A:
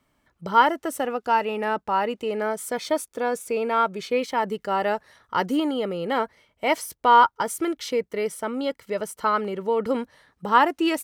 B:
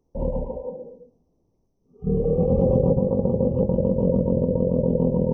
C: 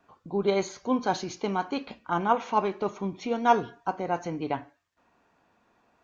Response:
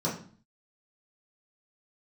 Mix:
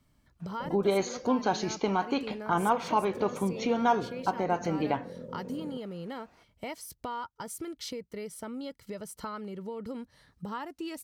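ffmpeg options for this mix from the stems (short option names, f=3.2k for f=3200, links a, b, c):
-filter_complex "[0:a]bass=f=250:g=13,treble=f=4k:g=5,acompressor=threshold=-31dB:ratio=4,equalizer=f=4.5k:t=o:w=0.58:g=4.5,volume=-6.5dB[a];[1:a]highpass=150,alimiter=level_in=1dB:limit=-24dB:level=0:latency=1:release=259,volume=-1dB,adelay=450,volume=-8.5dB[b];[2:a]acontrast=56,adelay=400,volume=-2dB[c];[a][b][c]amix=inputs=3:normalize=0,acompressor=threshold=-26dB:ratio=2"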